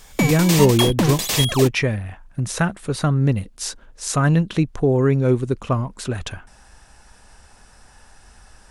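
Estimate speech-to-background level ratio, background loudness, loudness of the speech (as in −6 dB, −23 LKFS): 0.5 dB, −21.0 LKFS, −20.5 LKFS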